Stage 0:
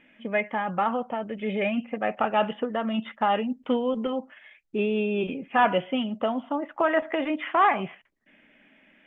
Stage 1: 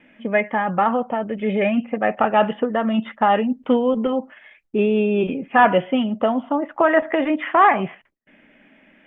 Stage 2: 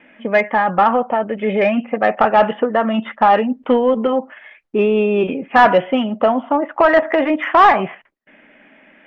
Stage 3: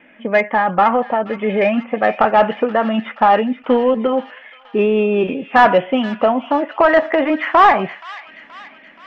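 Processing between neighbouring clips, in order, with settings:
dynamic EQ 1800 Hz, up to +5 dB, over -48 dBFS, Q 7; gate with hold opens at -52 dBFS; high shelf 2500 Hz -9 dB; gain +7.5 dB
overdrive pedal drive 12 dB, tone 1600 Hz, clips at -3 dBFS; gain +2.5 dB
thin delay 0.476 s, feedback 58%, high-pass 2300 Hz, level -10 dB

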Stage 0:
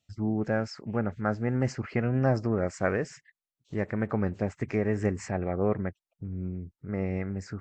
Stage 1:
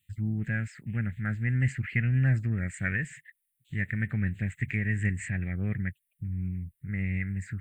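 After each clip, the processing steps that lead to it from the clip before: EQ curve 150 Hz 0 dB, 450 Hz -23 dB, 700 Hz -24 dB, 1100 Hz -26 dB, 1800 Hz +5 dB, 3700 Hz -2 dB, 5500 Hz -25 dB, 9100 Hz +13 dB; gain +4 dB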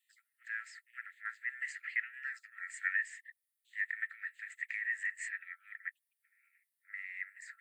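rippled Chebyshev high-pass 1300 Hz, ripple 9 dB; gain +1 dB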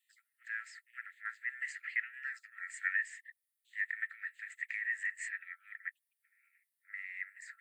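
nothing audible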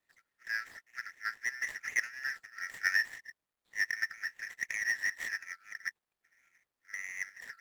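median filter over 15 samples; gain +7.5 dB

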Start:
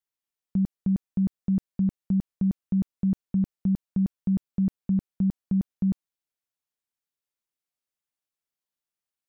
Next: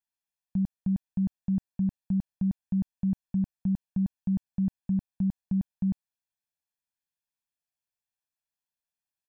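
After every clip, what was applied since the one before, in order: comb 1.2 ms, depth 86%; gain -6 dB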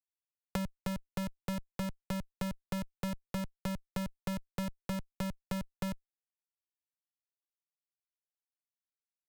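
Schmitt trigger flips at -43.5 dBFS; three-band squash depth 100%; gain -3 dB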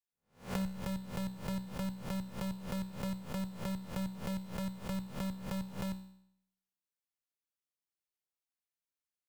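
spectral swells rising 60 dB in 0.36 s; resonator 63 Hz, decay 0.71 s, harmonics all, mix 70%; gain +4 dB

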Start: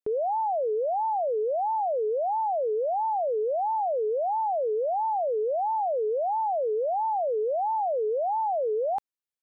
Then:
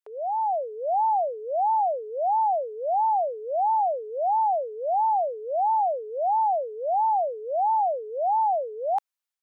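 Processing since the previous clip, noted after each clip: inverse Chebyshev high-pass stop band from 190 Hz, stop band 60 dB; AGC gain up to 5 dB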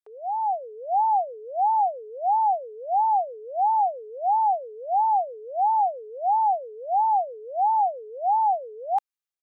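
comb 2.5 ms, depth 36%; upward expander 1.5:1, over -32 dBFS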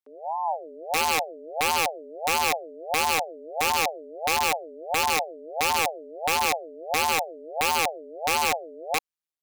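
AM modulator 160 Hz, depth 85%; wow and flutter 22 cents; wrapped overs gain 18.5 dB; gain +1.5 dB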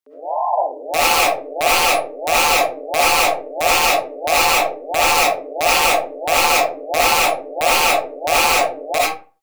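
reverb RT60 0.35 s, pre-delay 30 ms, DRR -7 dB; gain +2.5 dB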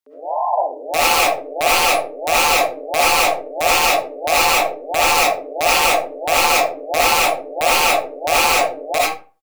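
echo 79 ms -24 dB

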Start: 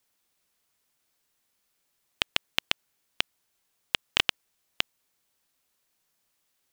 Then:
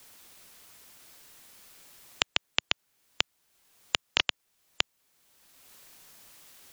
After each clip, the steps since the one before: spectral gate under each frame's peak -25 dB strong; three-band squash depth 70%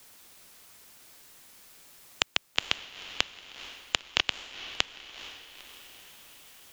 diffused feedback echo 0.462 s, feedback 56%, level -12.5 dB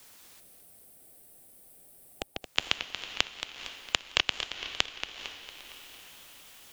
spectral gain 0.4–2.42, 800–7900 Hz -14 dB; warbling echo 0.228 s, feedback 50%, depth 141 cents, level -10 dB

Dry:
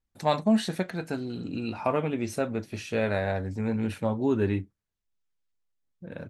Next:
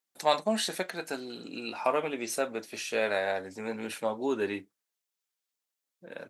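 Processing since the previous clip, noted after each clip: HPF 400 Hz 12 dB/oct; high shelf 3700 Hz +8 dB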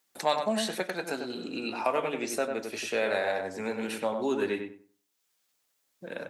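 on a send: darkening echo 96 ms, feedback 22%, low-pass 1800 Hz, level -5 dB; on the sum: three-band squash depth 40%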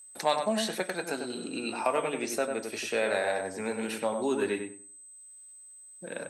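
whine 8200 Hz -48 dBFS

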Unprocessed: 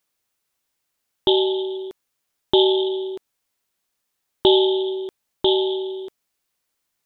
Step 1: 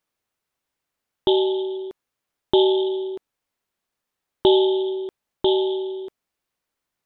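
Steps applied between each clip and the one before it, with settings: high shelf 3200 Hz -9.5 dB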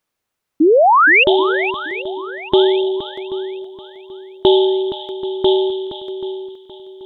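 painted sound rise, 0.6–1.24, 290–2900 Hz -14 dBFS; swung echo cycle 0.783 s, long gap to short 1.5:1, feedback 30%, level -11 dB; gain +4 dB

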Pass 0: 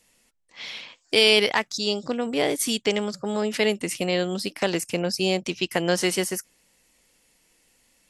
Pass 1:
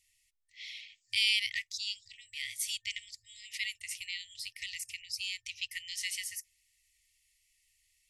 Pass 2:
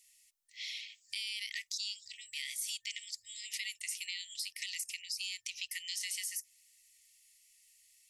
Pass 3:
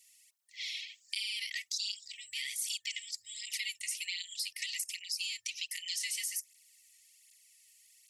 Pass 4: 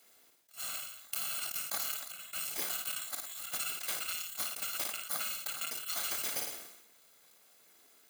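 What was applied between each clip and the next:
FFT band-reject 110–1800 Hz; gain -8.5 dB
tone controls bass -14 dB, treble +8 dB; limiter -23.5 dBFS, peak gain reduction 12 dB; compressor 2.5:1, threshold -38 dBFS, peak gain reduction 5.5 dB; gain +1 dB
tape flanging out of phase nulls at 1.3 Hz, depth 3 ms; gain +5.5 dB
FFT order left unsorted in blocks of 128 samples; flutter echo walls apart 9.4 m, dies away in 0.32 s; sustainer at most 60 dB/s

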